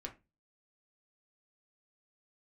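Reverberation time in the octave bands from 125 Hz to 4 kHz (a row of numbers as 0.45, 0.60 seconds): 0.45, 0.35, 0.25, 0.20, 0.20, 0.20 seconds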